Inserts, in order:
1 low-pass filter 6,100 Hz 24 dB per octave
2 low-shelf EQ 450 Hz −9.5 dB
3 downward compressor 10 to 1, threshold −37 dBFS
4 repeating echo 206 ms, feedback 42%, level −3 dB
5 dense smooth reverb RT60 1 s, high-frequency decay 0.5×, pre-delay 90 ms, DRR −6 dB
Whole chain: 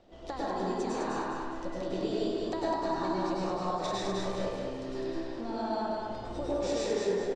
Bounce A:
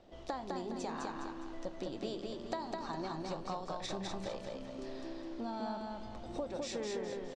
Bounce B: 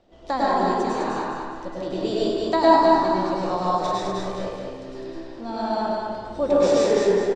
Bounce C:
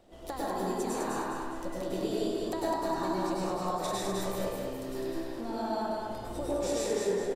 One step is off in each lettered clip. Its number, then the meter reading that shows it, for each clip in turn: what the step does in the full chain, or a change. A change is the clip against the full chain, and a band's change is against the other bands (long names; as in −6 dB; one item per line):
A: 5, echo-to-direct ratio 8.5 dB to −2.0 dB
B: 3, average gain reduction 5.0 dB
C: 1, 8 kHz band +6.0 dB